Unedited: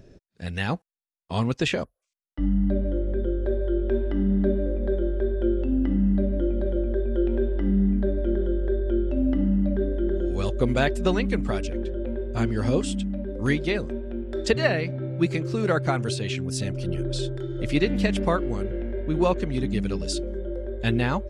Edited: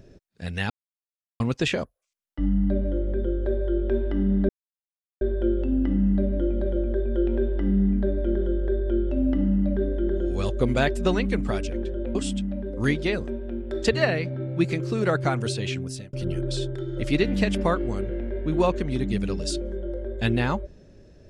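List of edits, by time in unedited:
0.70–1.40 s: mute
4.49–5.21 s: mute
12.15–12.77 s: delete
16.37–16.75 s: fade out

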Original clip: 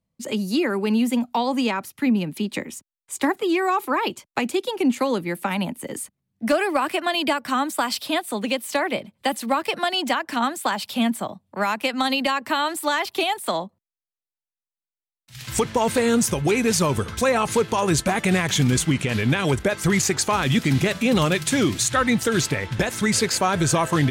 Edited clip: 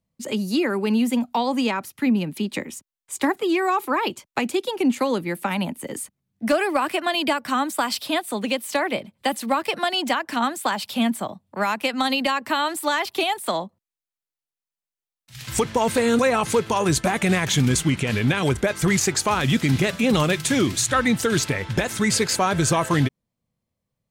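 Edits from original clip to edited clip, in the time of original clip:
16.19–17.21 s: delete

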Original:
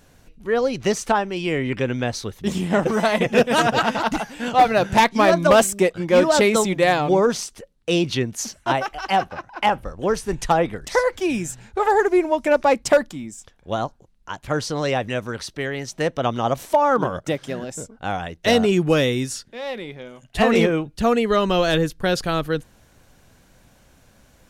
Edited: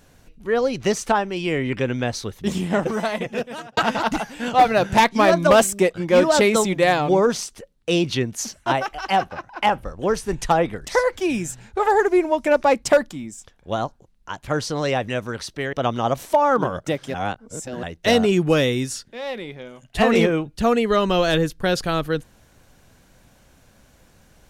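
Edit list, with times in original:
2.54–3.77 s: fade out
15.73–16.13 s: delete
17.54–18.23 s: reverse

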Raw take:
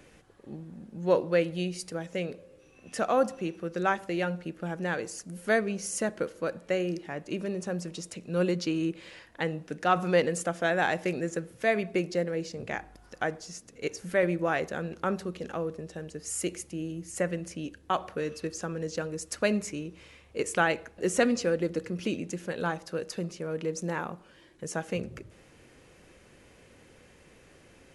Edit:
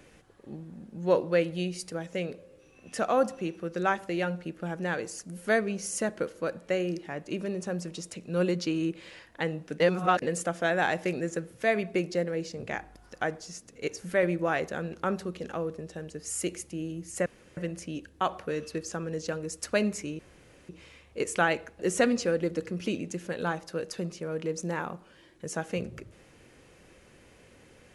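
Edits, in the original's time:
9.80–10.22 s: reverse
17.26 s: insert room tone 0.31 s
19.88 s: insert room tone 0.50 s

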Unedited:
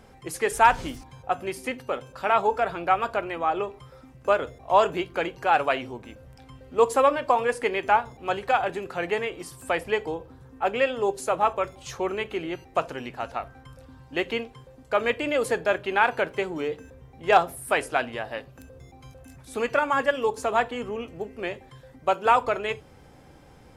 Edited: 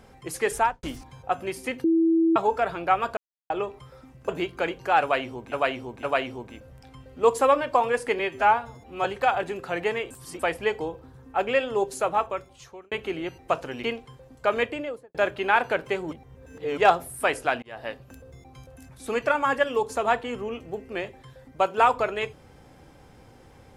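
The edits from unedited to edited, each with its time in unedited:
0.51–0.83 s: studio fade out
1.84–2.36 s: bleep 328 Hz -17 dBFS
3.17–3.50 s: mute
4.29–4.86 s: delete
5.58–6.09 s: loop, 3 plays
7.74–8.31 s: stretch 1.5×
9.37–9.66 s: reverse
11.28–12.18 s: fade out
13.10–14.31 s: delete
15.03–15.62 s: studio fade out
16.59–17.25 s: reverse
18.10–18.35 s: fade in

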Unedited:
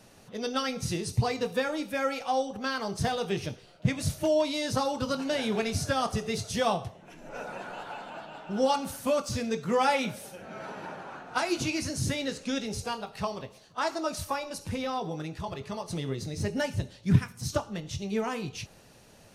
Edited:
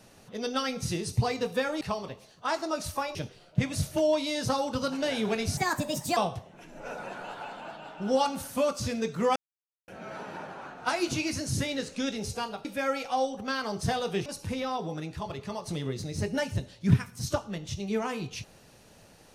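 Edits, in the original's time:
1.81–3.42 s: swap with 13.14–14.48 s
5.84–6.66 s: speed 137%
9.85–10.37 s: mute

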